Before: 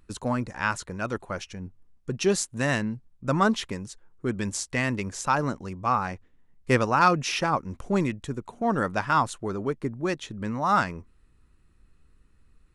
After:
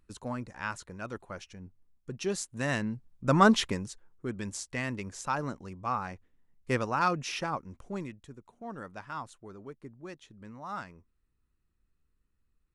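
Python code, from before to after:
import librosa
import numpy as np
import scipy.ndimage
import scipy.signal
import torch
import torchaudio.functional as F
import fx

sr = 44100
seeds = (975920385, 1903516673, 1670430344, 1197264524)

y = fx.gain(x, sr, db=fx.line((2.29, -9.0), (3.6, 3.0), (4.28, -7.5), (7.4, -7.5), (8.38, -16.5)))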